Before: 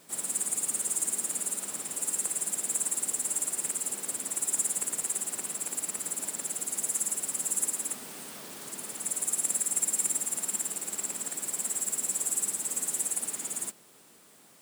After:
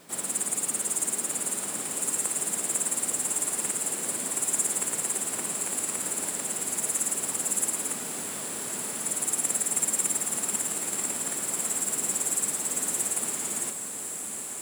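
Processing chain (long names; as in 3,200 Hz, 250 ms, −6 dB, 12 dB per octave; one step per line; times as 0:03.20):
high-shelf EQ 4,300 Hz −6 dB
feedback delay with all-pass diffusion 1,216 ms, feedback 63%, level −7.5 dB
level +6.5 dB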